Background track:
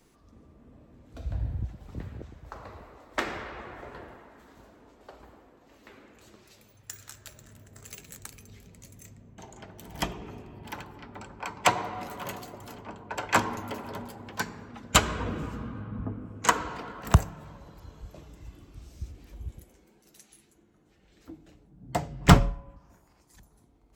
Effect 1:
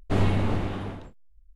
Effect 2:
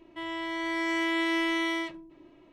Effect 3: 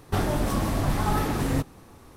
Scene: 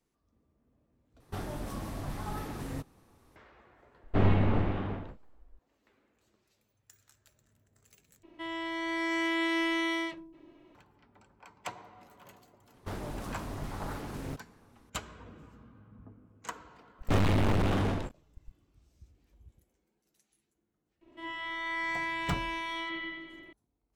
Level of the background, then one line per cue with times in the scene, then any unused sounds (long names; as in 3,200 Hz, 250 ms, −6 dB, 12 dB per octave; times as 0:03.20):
background track −18 dB
0:01.20: overwrite with 3 −13 dB
0:04.04: mix in 1 −1.5 dB + low-pass filter 2,700 Hz
0:08.23: overwrite with 2 −2 dB
0:12.74: mix in 3 −13.5 dB + highs frequency-modulated by the lows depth 0.87 ms
0:16.99: mix in 1 −11 dB + leveller curve on the samples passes 5
0:21.01: mix in 2 −8.5 dB + spring reverb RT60 1.6 s, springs 46/54 ms, chirp 45 ms, DRR −6 dB